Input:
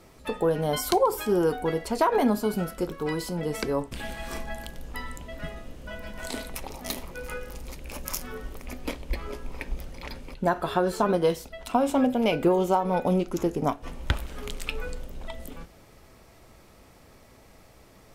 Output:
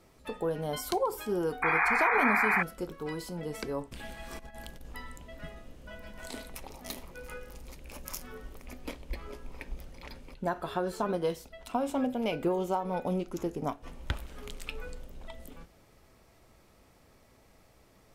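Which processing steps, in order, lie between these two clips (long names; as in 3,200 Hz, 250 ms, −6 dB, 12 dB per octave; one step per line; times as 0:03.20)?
0:01.62–0:02.63: sound drawn into the spectrogram noise 690–2,500 Hz −19 dBFS
0:04.39–0:04.94: compressor whose output falls as the input rises −36 dBFS, ratio −0.5
level −7.5 dB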